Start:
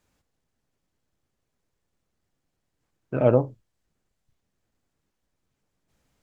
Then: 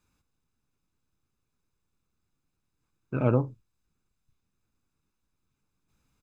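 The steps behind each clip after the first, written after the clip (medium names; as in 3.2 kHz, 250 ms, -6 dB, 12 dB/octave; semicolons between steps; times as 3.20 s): comb 0.8 ms, depth 55%; trim -4 dB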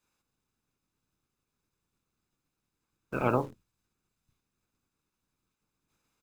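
spectral peaks clipped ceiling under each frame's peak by 17 dB; in parallel at -7 dB: bit crusher 7-bit; on the sum: trim -6.5 dB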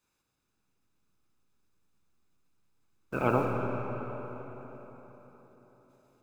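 reverberation RT60 4.3 s, pre-delay 40 ms, DRR 1.5 dB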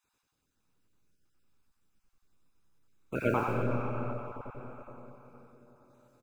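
random holes in the spectrogram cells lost 21%; on a send: feedback delay 93 ms, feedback 26%, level -4 dB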